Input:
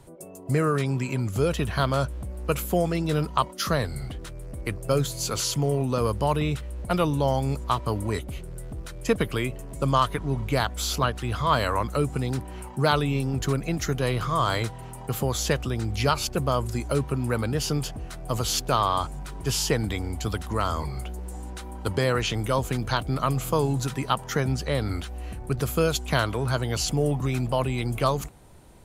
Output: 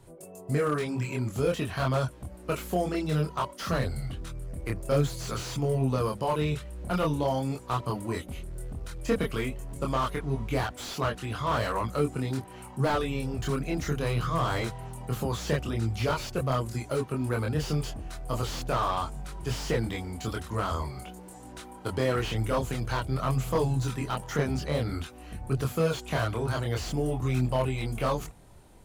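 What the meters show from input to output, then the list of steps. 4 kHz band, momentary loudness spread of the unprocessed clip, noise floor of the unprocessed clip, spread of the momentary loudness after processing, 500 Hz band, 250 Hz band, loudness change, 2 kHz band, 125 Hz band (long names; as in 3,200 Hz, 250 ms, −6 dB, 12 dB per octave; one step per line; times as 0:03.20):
−7.0 dB, 10 LU, −40 dBFS, 10 LU, −3.0 dB, −3.0 dB, −4.0 dB, −4.0 dB, −3.0 dB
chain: multi-voice chorus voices 2, 0.51 Hz, delay 25 ms, depth 2.3 ms
slew-rate limiting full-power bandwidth 64 Hz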